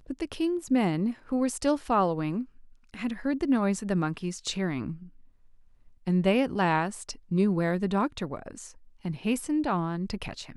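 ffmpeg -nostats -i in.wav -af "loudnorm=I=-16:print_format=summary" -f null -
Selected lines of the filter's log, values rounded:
Input Integrated:    -28.8 LUFS
Input True Peak:     -10.6 dBTP
Input LRA:             3.0 LU
Input Threshold:     -39.4 LUFS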